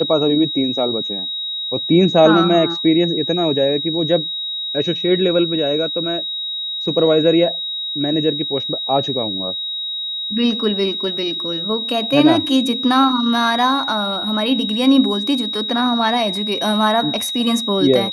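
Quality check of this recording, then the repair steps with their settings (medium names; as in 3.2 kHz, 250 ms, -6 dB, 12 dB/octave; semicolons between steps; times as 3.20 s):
whine 3.8 kHz -22 dBFS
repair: band-stop 3.8 kHz, Q 30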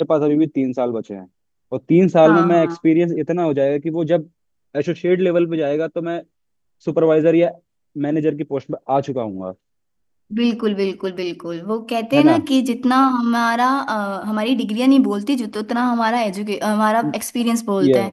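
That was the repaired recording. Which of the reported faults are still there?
nothing left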